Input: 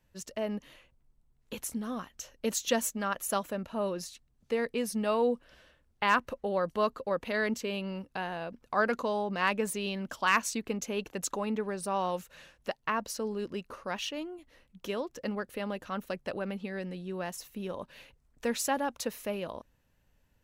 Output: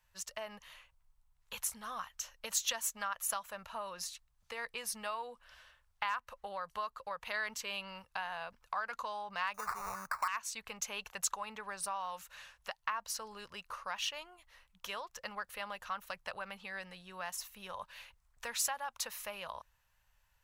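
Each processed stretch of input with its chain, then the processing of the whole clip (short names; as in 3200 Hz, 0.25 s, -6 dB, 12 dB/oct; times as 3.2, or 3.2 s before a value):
9.54–10.28 sample-rate reducer 3200 Hz + Butterworth band-stop 3200 Hz, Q 1.5 + bell 1200 Hz +14 dB 0.6 oct
whole clip: bell 1000 Hz +10.5 dB 1.4 oct; compressor 6:1, threshold -27 dBFS; passive tone stack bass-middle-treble 10-0-10; gain +2 dB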